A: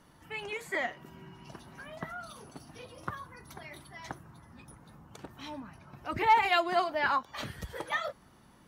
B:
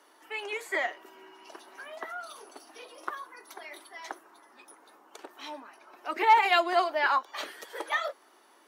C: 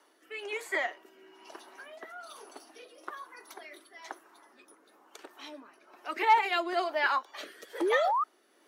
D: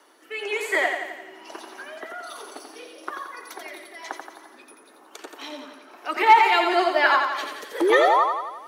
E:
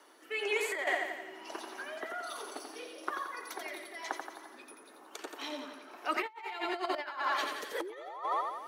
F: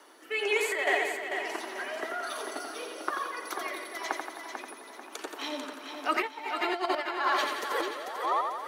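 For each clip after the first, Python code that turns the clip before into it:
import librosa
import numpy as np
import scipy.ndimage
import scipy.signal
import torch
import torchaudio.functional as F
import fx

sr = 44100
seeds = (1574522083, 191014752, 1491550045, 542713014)

y1 = scipy.signal.sosfilt(scipy.signal.butter(6, 330.0, 'highpass', fs=sr, output='sos'), x)
y1 = fx.notch(y1, sr, hz=510.0, q=13.0)
y1 = y1 * librosa.db_to_amplitude(3.0)
y2 = fx.rotary(y1, sr, hz=1.1)
y2 = fx.spec_paint(y2, sr, seeds[0], shape='rise', start_s=7.81, length_s=0.43, low_hz=320.0, high_hz=1300.0, level_db=-27.0)
y3 = fx.echo_feedback(y2, sr, ms=87, feedback_pct=58, wet_db=-5.5)
y3 = y3 * librosa.db_to_amplitude(8.0)
y4 = fx.over_compress(y3, sr, threshold_db=-25.0, ratio=-0.5)
y4 = y4 * librosa.db_to_amplitude(-8.5)
y5 = fx.echo_feedback(y4, sr, ms=443, feedback_pct=39, wet_db=-7.0)
y5 = y5 * librosa.db_to_amplitude(4.5)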